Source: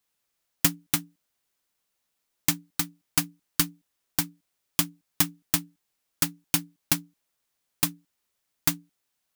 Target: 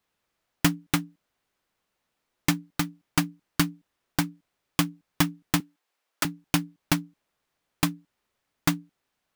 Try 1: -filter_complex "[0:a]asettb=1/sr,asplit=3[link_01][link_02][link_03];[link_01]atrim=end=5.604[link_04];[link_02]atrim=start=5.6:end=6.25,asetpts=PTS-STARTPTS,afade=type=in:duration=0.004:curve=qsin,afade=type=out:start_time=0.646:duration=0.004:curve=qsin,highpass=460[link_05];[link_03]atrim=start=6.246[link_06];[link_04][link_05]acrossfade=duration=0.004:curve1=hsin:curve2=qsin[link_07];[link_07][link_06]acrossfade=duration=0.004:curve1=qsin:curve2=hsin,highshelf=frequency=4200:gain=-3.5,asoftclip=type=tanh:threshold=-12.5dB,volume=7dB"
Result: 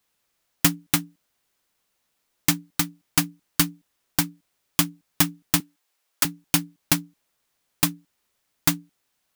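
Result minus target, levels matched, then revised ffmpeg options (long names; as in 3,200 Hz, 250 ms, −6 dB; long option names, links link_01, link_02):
8,000 Hz band +3.5 dB
-filter_complex "[0:a]asettb=1/sr,asplit=3[link_01][link_02][link_03];[link_01]atrim=end=5.604[link_04];[link_02]atrim=start=5.6:end=6.25,asetpts=PTS-STARTPTS,afade=type=in:duration=0.004:curve=qsin,afade=type=out:start_time=0.646:duration=0.004:curve=qsin,highpass=460[link_05];[link_03]atrim=start=6.246[link_06];[link_04][link_05]acrossfade=duration=0.004:curve1=hsin:curve2=qsin[link_07];[link_07][link_06]acrossfade=duration=0.004:curve1=qsin:curve2=hsin,highshelf=frequency=4200:gain=-15,asoftclip=type=tanh:threshold=-12.5dB,volume=7dB"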